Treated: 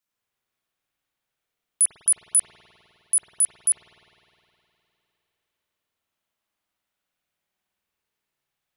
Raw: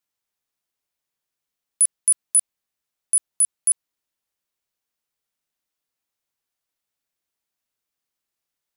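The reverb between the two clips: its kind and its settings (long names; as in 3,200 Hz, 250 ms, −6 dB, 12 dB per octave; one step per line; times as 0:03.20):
spring reverb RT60 3.2 s, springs 51 ms, chirp 45 ms, DRR −6.5 dB
level −2 dB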